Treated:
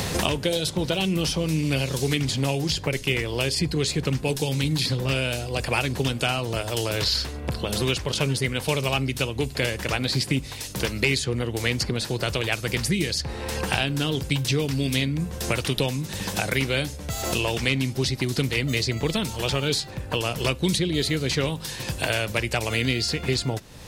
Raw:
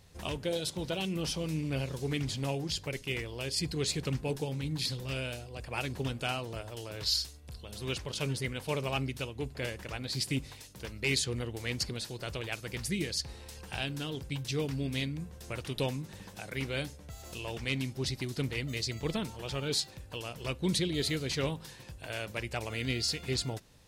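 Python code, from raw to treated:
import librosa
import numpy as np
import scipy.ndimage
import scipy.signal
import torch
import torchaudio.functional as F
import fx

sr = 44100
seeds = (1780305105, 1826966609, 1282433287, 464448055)

y = fx.band_squash(x, sr, depth_pct=100)
y = y * librosa.db_to_amplitude(9.0)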